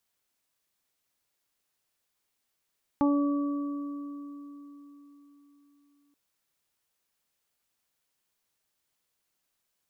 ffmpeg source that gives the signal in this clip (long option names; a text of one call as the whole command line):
ffmpeg -f lavfi -i "aevalsrc='0.0944*pow(10,-3*t/4.11)*sin(2*PI*286*t)+0.0299*pow(10,-3*t/2.31)*sin(2*PI*572*t)+0.0473*pow(10,-3*t/0.32)*sin(2*PI*858*t)+0.0211*pow(10,-3*t/3.68)*sin(2*PI*1144*t)':duration=3.13:sample_rate=44100" out.wav